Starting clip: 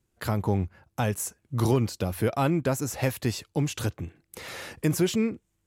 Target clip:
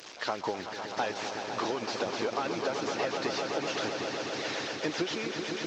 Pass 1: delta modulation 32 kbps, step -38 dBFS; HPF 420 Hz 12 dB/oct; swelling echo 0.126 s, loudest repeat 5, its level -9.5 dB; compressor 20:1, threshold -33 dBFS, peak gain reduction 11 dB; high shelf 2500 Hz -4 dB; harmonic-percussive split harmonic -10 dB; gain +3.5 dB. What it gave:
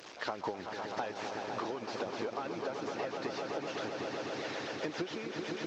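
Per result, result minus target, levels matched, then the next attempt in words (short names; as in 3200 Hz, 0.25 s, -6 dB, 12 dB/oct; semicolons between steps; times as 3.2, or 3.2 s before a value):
compressor: peak gain reduction +5.5 dB; 4000 Hz band -3.0 dB
delta modulation 32 kbps, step -38 dBFS; HPF 420 Hz 12 dB/oct; swelling echo 0.126 s, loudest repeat 5, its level -9.5 dB; compressor 20:1, threshold -27 dBFS, peak gain reduction 5.5 dB; high shelf 2500 Hz -4 dB; harmonic-percussive split harmonic -10 dB; gain +3.5 dB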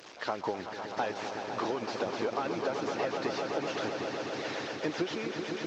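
4000 Hz band -4.0 dB
delta modulation 32 kbps, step -38 dBFS; HPF 420 Hz 12 dB/oct; swelling echo 0.126 s, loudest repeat 5, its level -9.5 dB; compressor 20:1, threshold -27 dBFS, peak gain reduction 5.5 dB; high shelf 2500 Hz +3.5 dB; harmonic-percussive split harmonic -10 dB; gain +3.5 dB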